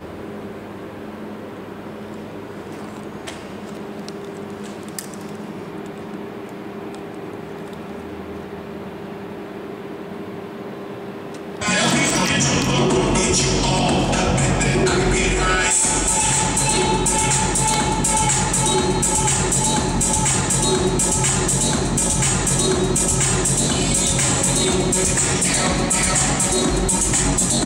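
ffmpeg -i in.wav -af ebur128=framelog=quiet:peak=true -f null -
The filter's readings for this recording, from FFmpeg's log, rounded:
Integrated loudness:
  I:         -17.0 LUFS
  Threshold: -29.2 LUFS
Loudness range:
  LRA:        15.6 LU
  Threshold: -39.1 LUFS
  LRA low:   -32.2 LUFS
  LRA high:  -16.6 LUFS
True peak:
  Peak:       -3.9 dBFS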